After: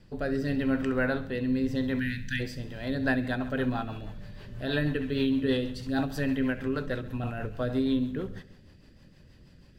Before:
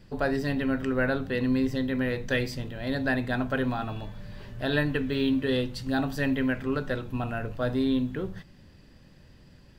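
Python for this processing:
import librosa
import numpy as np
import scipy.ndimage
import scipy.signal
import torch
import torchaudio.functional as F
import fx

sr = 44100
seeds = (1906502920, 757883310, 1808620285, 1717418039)

y = fx.brickwall_bandstop(x, sr, low_hz=260.0, high_hz=1400.0, at=(1.98, 2.39), fade=0.02)
y = fx.echo_feedback(y, sr, ms=67, feedback_pct=58, wet_db=-14.5)
y = fx.rotary_switch(y, sr, hz=0.85, then_hz=6.3, switch_at_s=2.45)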